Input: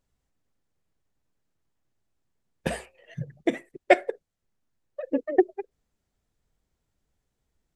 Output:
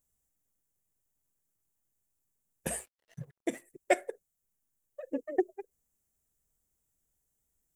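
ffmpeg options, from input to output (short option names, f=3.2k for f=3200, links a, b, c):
-filter_complex "[0:a]aexciter=amount=5.8:drive=7.1:freq=6.4k,asettb=1/sr,asplit=3[a][b][c];[a]atrim=end=2.764[d];[b]atrim=start=2.76:end=3.62,asetpts=PTS-STARTPTS,afade=t=in:d=0.004:c=qsin,afade=t=out:st=0.856:d=0.004:c=qsin,aeval=exprs='sgn(val(0))*max(abs(val(0))-0.00316,0)':c=same[e];[c]atrim=start=3.616[f];[d][e]acrossfade=d=0.004:c1=hsin:c2=qsin[g];[g][f]acrossfade=d=0.004:c1=qsin:c2=hsin,volume=-8.5dB"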